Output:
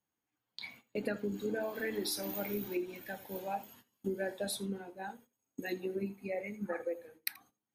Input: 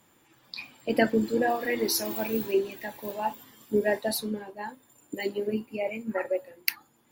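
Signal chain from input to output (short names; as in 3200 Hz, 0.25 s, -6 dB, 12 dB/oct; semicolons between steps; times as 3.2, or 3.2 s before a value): gate -49 dBFS, range -21 dB; compressor 6:1, threshold -26 dBFS, peak gain reduction 9.5 dB; on a send at -19 dB: reverb, pre-delay 73 ms; on the sum: speed mistake 48 kHz file played as 44.1 kHz; gain -6 dB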